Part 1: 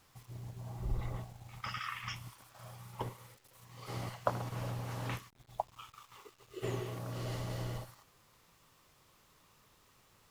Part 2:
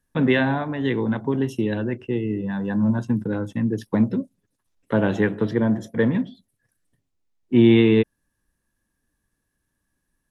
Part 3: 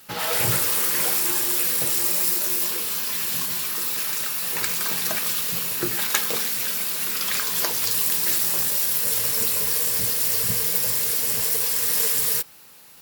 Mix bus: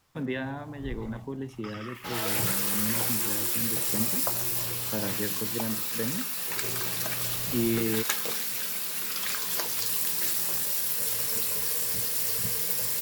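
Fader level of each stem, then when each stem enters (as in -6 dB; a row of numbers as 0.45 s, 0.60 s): -2.5 dB, -13.0 dB, -6.0 dB; 0.00 s, 0.00 s, 1.95 s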